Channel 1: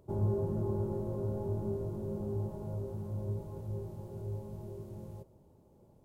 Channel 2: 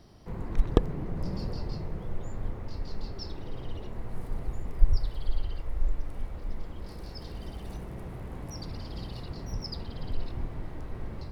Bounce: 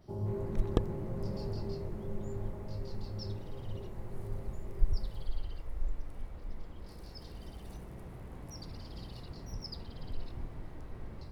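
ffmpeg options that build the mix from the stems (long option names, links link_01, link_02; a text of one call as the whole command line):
ffmpeg -i stem1.wav -i stem2.wav -filter_complex "[0:a]volume=-5dB[link_01];[1:a]adynamicequalizer=threshold=0.00112:dfrequency=5000:dqfactor=0.7:tfrequency=5000:tqfactor=0.7:attack=5:release=100:ratio=0.375:range=2:mode=boostabove:tftype=highshelf,volume=-7dB[link_02];[link_01][link_02]amix=inputs=2:normalize=0" out.wav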